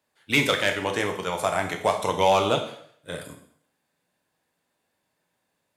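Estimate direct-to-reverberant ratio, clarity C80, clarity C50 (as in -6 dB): 4.0 dB, 12.5 dB, 9.0 dB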